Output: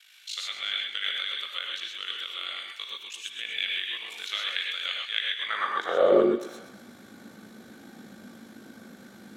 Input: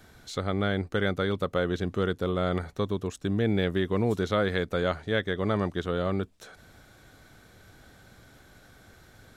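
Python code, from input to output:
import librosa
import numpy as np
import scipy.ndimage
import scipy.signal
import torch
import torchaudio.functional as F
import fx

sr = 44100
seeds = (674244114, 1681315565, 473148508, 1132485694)

p1 = fx.filter_sweep_highpass(x, sr, from_hz=2700.0, to_hz=230.0, start_s=5.34, end_s=6.36, q=4.2)
p2 = p1 + fx.echo_thinned(p1, sr, ms=122, feedback_pct=58, hz=610.0, wet_db=-11.5, dry=0)
p3 = p2 * np.sin(2.0 * np.pi * 26.0 * np.arange(len(p2)) / sr)
p4 = fx.rev_gated(p3, sr, seeds[0], gate_ms=150, shape='rising', drr_db=-0.5)
y = p4 * 10.0 ** (2.5 / 20.0)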